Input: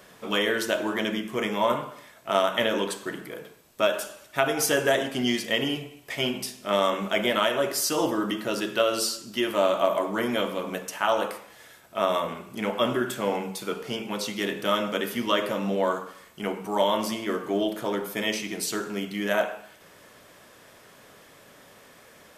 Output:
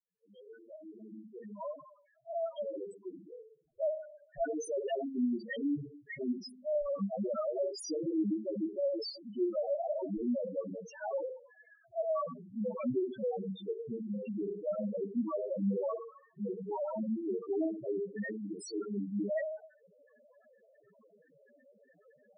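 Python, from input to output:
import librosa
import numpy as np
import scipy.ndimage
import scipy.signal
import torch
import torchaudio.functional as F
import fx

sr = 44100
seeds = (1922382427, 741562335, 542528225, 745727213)

y = fx.fade_in_head(x, sr, length_s=5.89)
y = (np.mod(10.0 ** (18.0 / 20.0) * y + 1.0, 2.0) - 1.0) / 10.0 ** (18.0 / 20.0)
y = fx.spec_topn(y, sr, count=2)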